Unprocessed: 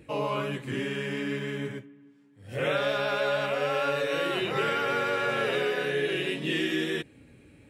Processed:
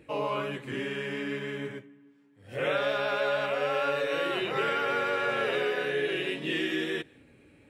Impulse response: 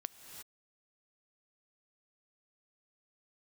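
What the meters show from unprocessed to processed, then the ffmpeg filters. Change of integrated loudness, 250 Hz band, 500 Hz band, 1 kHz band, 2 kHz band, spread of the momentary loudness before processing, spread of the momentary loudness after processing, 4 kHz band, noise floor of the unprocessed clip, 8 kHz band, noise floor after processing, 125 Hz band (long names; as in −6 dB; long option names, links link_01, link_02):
−1.0 dB, −2.5 dB, −1.0 dB, −0.5 dB, −0.5 dB, 6 LU, 7 LU, −2.0 dB, −56 dBFS, can't be measured, −59 dBFS, −6.0 dB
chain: -filter_complex "[0:a]bass=frequency=250:gain=-6,treble=frequency=4000:gain=-5,asplit=2[link_01][link_02];[1:a]atrim=start_sample=2205,afade=type=out:start_time=0.26:duration=0.01,atrim=end_sample=11907[link_03];[link_02][link_03]afir=irnorm=-1:irlink=0,volume=-8dB[link_04];[link_01][link_04]amix=inputs=2:normalize=0,volume=-2.5dB"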